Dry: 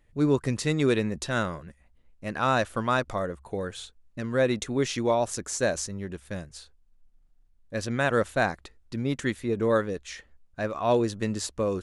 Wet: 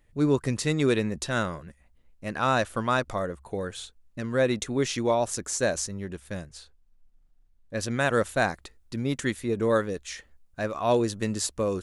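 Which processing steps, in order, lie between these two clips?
treble shelf 7.1 kHz +4 dB, from 6.45 s -2.5 dB, from 7.80 s +9 dB

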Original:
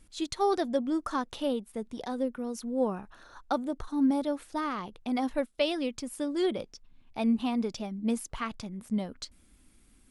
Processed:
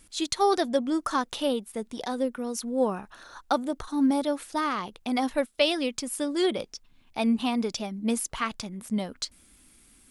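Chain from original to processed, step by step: tilt EQ +1.5 dB/octave; trim +5 dB

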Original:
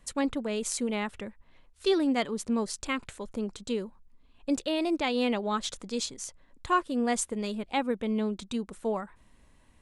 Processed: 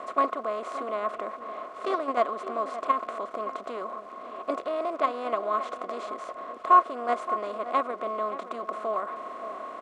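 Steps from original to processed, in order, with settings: spectral levelling over time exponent 0.4; in parallel at +2.5 dB: level held to a coarse grid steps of 22 dB; on the sum: crackle 270 per s -29 dBFS; two resonant band-passes 850 Hz, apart 0.72 oct; echo from a far wall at 98 m, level -12 dB; trim +2 dB

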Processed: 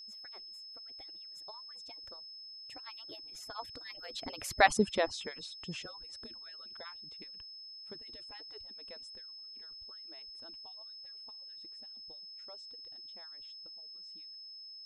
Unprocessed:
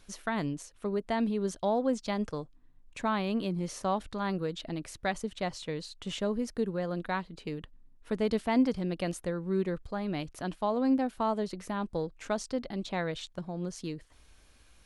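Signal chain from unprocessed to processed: harmonic-percussive separation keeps percussive; Doppler pass-by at 4.69 s, 31 m/s, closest 5.9 m; whistle 5.2 kHz -56 dBFS; trim +9.5 dB

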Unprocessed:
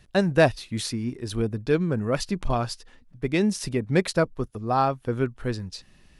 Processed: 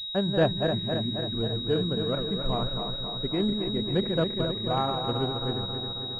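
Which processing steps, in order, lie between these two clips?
backward echo that repeats 135 ms, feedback 79%, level -5.5 dB; distance through air 350 m; class-D stage that switches slowly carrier 3.8 kHz; trim -4.5 dB

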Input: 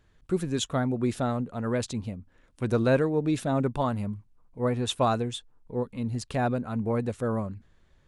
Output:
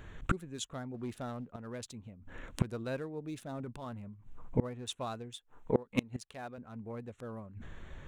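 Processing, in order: local Wiener filter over 9 samples; treble shelf 2.7 kHz +9.5 dB; 0.94–1.47 s: waveshaping leveller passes 1; 3.55–4.09 s: transient shaper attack -8 dB, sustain +6 dB; 5.35–6.58 s: bass shelf 270 Hz -10.5 dB; inverted gate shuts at -29 dBFS, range -30 dB; trim +14.5 dB

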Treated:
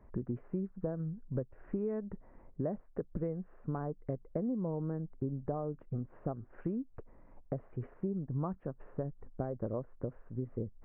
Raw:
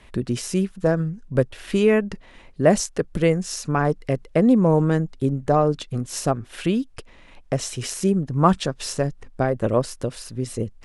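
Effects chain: compression 6:1, threshold -25 dBFS, peak gain reduction 14 dB; Gaussian low-pass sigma 7.2 samples; trim -7 dB

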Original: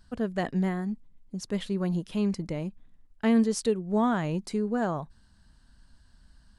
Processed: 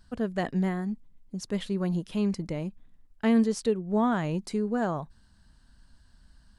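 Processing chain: 3.52–4.12 s: treble shelf 4.9 kHz -6.5 dB

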